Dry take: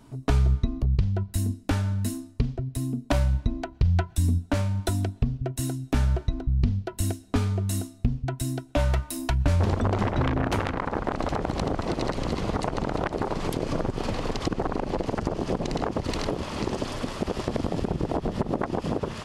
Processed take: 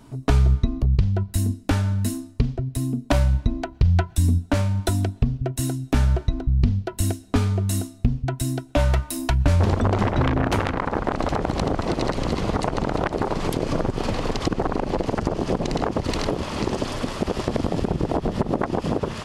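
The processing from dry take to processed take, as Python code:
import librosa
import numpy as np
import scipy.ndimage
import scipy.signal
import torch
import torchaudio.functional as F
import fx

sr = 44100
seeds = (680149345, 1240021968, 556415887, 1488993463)

y = fx.quant_float(x, sr, bits=8, at=(12.75, 15.02))
y = y * librosa.db_to_amplitude(4.0)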